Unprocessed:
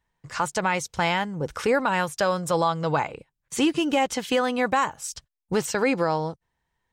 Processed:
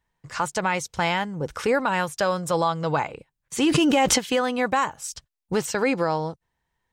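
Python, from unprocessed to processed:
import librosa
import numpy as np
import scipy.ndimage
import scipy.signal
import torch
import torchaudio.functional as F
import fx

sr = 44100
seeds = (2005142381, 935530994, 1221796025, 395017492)

y = fx.env_flatten(x, sr, amount_pct=100, at=(3.63, 4.17), fade=0.02)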